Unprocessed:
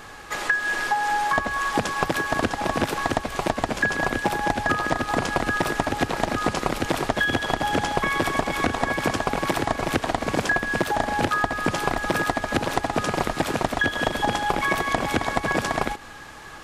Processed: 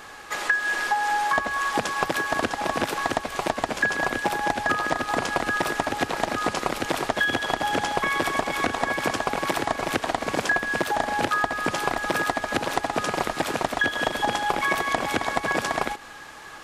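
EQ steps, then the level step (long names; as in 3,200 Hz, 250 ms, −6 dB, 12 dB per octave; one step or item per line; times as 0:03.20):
low-shelf EQ 210 Hz −10 dB
0.0 dB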